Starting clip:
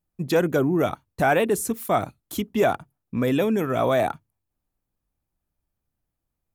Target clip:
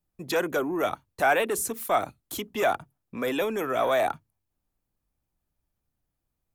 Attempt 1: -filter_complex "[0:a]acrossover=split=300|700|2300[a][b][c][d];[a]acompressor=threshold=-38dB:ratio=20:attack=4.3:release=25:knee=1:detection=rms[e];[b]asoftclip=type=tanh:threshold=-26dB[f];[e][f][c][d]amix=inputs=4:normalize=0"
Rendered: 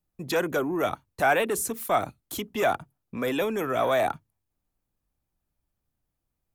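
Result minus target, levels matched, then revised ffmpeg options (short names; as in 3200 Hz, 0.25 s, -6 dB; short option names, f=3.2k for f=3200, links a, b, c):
compressor: peak gain reduction -5.5 dB
-filter_complex "[0:a]acrossover=split=300|700|2300[a][b][c][d];[a]acompressor=threshold=-44dB:ratio=20:attack=4.3:release=25:knee=1:detection=rms[e];[b]asoftclip=type=tanh:threshold=-26dB[f];[e][f][c][d]amix=inputs=4:normalize=0"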